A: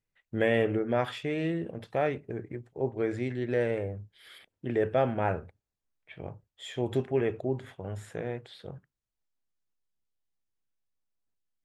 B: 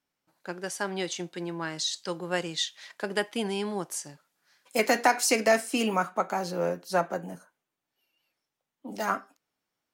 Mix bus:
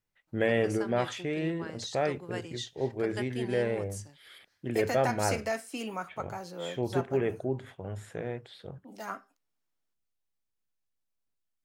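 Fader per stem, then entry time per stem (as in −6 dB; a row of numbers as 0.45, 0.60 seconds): −1.0, −10.0 decibels; 0.00, 0.00 seconds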